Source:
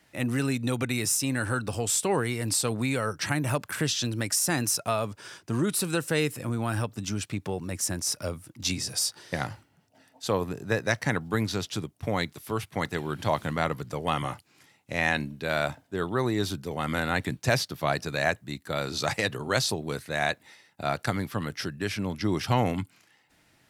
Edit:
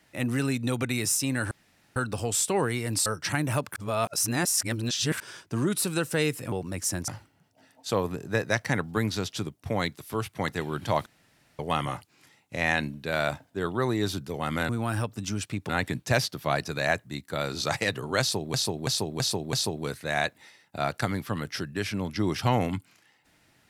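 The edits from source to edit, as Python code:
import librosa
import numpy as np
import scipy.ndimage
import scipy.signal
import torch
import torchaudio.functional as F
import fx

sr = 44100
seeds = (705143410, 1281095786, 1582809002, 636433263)

y = fx.edit(x, sr, fx.insert_room_tone(at_s=1.51, length_s=0.45),
    fx.cut(start_s=2.61, length_s=0.42),
    fx.reverse_span(start_s=3.73, length_s=1.44),
    fx.move(start_s=6.49, length_s=1.0, to_s=17.06),
    fx.cut(start_s=8.05, length_s=1.4),
    fx.room_tone_fill(start_s=13.43, length_s=0.53),
    fx.repeat(start_s=19.58, length_s=0.33, count=5), tone=tone)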